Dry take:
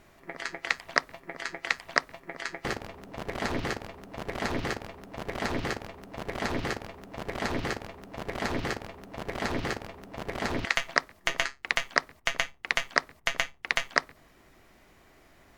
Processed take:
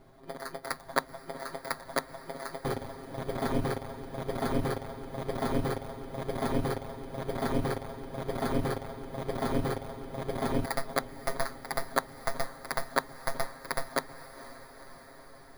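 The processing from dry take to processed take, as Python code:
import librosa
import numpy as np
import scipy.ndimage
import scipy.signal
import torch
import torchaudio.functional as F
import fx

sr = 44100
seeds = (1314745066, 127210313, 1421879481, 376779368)

p1 = fx.bit_reversed(x, sr, seeds[0], block=16)
p2 = fx.lowpass(p1, sr, hz=1600.0, slope=6)
p3 = p2 + 0.91 * np.pad(p2, (int(7.5 * sr / 1000.0), 0))[:len(p2)]
y = p3 + fx.echo_diffused(p3, sr, ms=487, feedback_pct=70, wet_db=-15.5, dry=0)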